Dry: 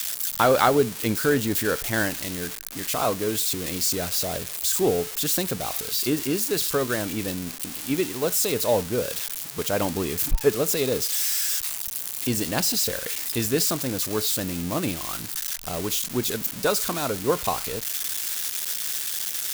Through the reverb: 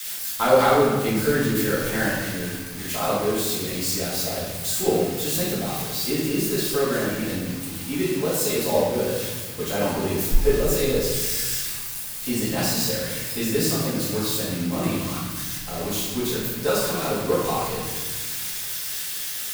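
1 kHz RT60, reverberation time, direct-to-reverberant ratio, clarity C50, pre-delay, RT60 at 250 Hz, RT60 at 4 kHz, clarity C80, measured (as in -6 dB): 1.3 s, 1.3 s, -10.5 dB, 0.0 dB, 4 ms, 2.0 s, 1.1 s, 2.0 dB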